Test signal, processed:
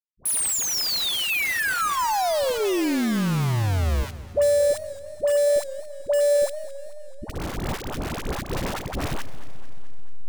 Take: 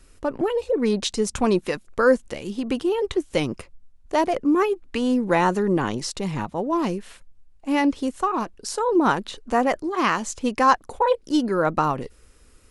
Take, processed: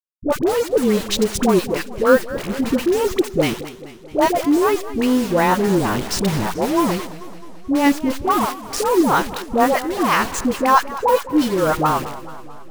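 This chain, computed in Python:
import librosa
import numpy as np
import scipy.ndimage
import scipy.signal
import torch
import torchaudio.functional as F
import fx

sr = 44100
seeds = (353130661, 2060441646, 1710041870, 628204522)

p1 = fx.delta_hold(x, sr, step_db=-27.5)
p2 = fx.rider(p1, sr, range_db=5, speed_s=0.5)
p3 = p1 + (p2 * 10.0 ** (1.5 / 20.0))
p4 = fx.dispersion(p3, sr, late='highs', ms=79.0, hz=650.0)
p5 = fx.echo_warbled(p4, sr, ms=217, feedback_pct=60, rate_hz=2.8, cents=142, wet_db=-16)
y = p5 * 10.0 ** (-2.0 / 20.0)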